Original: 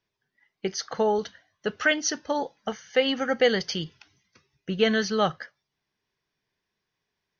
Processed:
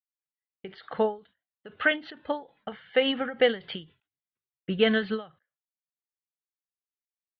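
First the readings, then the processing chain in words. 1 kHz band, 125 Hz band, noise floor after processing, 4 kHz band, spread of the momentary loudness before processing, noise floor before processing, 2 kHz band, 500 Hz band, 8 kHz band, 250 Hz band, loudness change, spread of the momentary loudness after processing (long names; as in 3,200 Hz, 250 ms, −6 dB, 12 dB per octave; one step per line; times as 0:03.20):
−5.5 dB, −4.0 dB, below −85 dBFS, −3.0 dB, 14 LU, −83 dBFS, −1.5 dB, −2.0 dB, can't be measured, −2.0 dB, −1.0 dB, 19 LU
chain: noise gate −52 dBFS, range −35 dB
Butterworth low-pass 3,800 Hz 72 dB per octave
every ending faded ahead of time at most 190 dB per second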